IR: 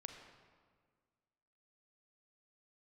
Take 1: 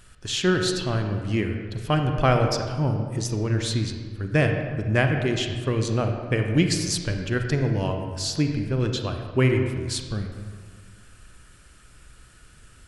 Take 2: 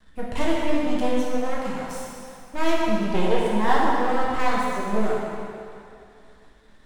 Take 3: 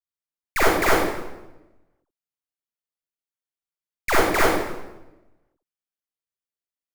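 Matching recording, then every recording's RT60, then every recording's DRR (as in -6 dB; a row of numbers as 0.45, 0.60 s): 1; 1.7, 2.5, 1.0 s; 4.0, -5.5, -7.5 dB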